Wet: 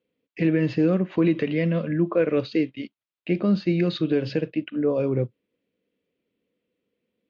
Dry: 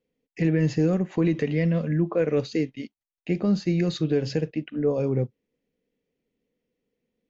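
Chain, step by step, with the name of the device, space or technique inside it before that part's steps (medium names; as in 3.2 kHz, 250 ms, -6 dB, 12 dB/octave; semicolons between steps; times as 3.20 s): guitar cabinet (cabinet simulation 110–3900 Hz, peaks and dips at 150 Hz -9 dB, 240 Hz -6 dB, 440 Hz -5 dB, 800 Hz -9 dB, 1.9 kHz -5 dB); trim +5.5 dB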